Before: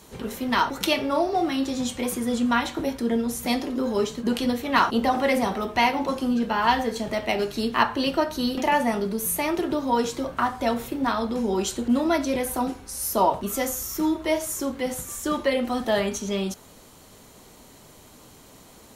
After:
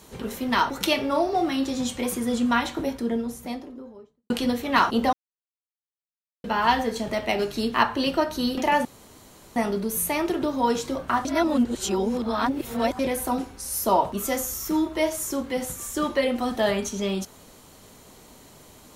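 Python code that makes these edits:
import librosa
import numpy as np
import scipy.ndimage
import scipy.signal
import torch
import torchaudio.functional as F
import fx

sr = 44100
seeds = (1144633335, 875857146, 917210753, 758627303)

y = fx.studio_fade_out(x, sr, start_s=2.59, length_s=1.71)
y = fx.edit(y, sr, fx.silence(start_s=5.13, length_s=1.31),
    fx.insert_room_tone(at_s=8.85, length_s=0.71),
    fx.reverse_span(start_s=10.54, length_s=1.74), tone=tone)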